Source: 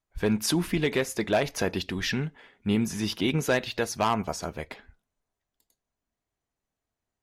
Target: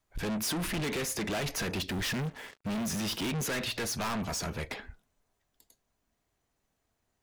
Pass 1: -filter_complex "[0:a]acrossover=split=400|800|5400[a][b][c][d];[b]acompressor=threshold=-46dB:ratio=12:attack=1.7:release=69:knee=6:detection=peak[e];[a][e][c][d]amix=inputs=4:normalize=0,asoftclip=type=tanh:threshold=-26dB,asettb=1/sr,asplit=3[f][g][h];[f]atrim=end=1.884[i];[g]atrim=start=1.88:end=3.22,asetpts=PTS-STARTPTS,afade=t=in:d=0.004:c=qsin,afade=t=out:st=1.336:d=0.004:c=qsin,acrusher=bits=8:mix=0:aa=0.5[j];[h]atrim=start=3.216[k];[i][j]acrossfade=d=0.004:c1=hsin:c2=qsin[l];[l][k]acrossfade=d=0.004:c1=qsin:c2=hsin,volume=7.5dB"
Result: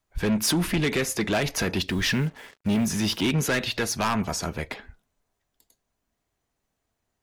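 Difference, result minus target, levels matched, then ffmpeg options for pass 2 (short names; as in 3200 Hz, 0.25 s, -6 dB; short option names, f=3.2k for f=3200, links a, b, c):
soft clip: distortion -7 dB
-filter_complex "[0:a]acrossover=split=400|800|5400[a][b][c][d];[b]acompressor=threshold=-46dB:ratio=12:attack=1.7:release=69:knee=6:detection=peak[e];[a][e][c][d]amix=inputs=4:normalize=0,asoftclip=type=tanh:threshold=-38dB,asettb=1/sr,asplit=3[f][g][h];[f]atrim=end=1.884[i];[g]atrim=start=1.88:end=3.22,asetpts=PTS-STARTPTS,afade=t=in:d=0.004:c=qsin,afade=t=out:st=1.336:d=0.004:c=qsin,acrusher=bits=8:mix=0:aa=0.5[j];[h]atrim=start=3.216[k];[i][j]acrossfade=d=0.004:c1=hsin:c2=qsin[l];[l][k]acrossfade=d=0.004:c1=qsin:c2=hsin,volume=7.5dB"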